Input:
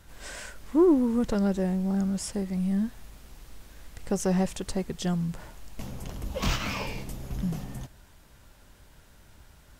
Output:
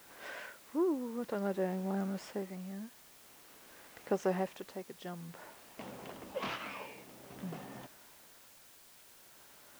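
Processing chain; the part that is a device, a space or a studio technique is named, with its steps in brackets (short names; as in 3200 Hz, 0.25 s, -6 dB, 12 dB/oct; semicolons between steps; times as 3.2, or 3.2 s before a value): shortwave radio (BPF 330–2700 Hz; tremolo 0.51 Hz, depth 68%; white noise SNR 19 dB)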